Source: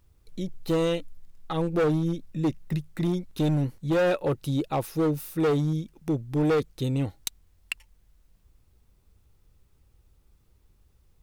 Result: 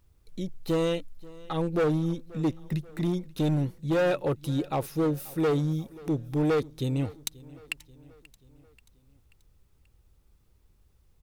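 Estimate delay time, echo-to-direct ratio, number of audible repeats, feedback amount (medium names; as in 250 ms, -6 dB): 534 ms, -20.0 dB, 3, 53%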